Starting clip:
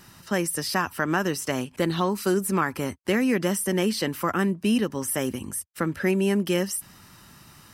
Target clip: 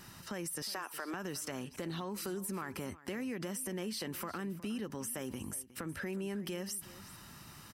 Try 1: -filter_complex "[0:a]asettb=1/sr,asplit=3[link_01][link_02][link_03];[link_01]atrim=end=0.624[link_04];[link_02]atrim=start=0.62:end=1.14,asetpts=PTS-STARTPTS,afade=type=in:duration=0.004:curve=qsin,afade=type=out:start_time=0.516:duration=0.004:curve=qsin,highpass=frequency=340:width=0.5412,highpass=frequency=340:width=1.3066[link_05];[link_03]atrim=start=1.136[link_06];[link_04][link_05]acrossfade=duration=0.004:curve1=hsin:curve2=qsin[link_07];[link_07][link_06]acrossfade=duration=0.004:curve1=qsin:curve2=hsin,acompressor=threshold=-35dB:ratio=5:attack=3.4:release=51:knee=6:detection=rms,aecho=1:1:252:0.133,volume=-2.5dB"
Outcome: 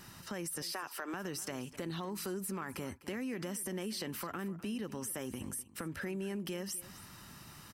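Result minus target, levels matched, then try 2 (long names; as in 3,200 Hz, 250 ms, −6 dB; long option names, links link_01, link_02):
echo 111 ms early
-filter_complex "[0:a]asettb=1/sr,asplit=3[link_01][link_02][link_03];[link_01]atrim=end=0.624[link_04];[link_02]atrim=start=0.62:end=1.14,asetpts=PTS-STARTPTS,afade=type=in:duration=0.004:curve=qsin,afade=type=out:start_time=0.516:duration=0.004:curve=qsin,highpass=frequency=340:width=0.5412,highpass=frequency=340:width=1.3066[link_05];[link_03]atrim=start=1.136[link_06];[link_04][link_05]acrossfade=duration=0.004:curve1=hsin:curve2=qsin[link_07];[link_07][link_06]acrossfade=duration=0.004:curve1=qsin:curve2=hsin,acompressor=threshold=-35dB:ratio=5:attack=3.4:release=51:knee=6:detection=rms,aecho=1:1:363:0.133,volume=-2.5dB"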